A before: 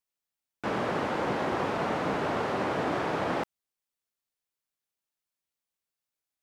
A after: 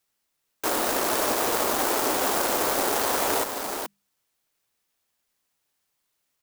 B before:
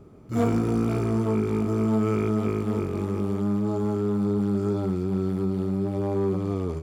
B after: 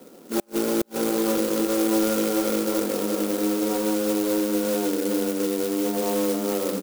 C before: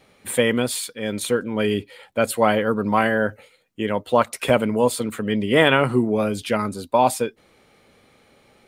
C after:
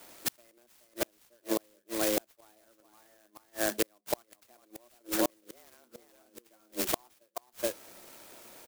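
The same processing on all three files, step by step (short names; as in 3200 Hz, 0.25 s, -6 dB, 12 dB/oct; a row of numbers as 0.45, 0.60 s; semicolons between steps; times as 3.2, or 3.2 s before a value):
HPF 87 Hz 6 dB/oct; high shelf 2100 Hz +11.5 dB; on a send: echo 0.425 s -7 dB; on the sum: frequency shift +110 Hz; in parallel at +0.5 dB: compressor 12:1, threshold -25 dBFS; on the sum: notches 50/100/150/200 Hz; flipped gate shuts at -9 dBFS, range -40 dB; clock jitter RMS 0.11 ms; normalise peaks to -12 dBFS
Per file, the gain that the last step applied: -2.5, -3.5, -6.5 dB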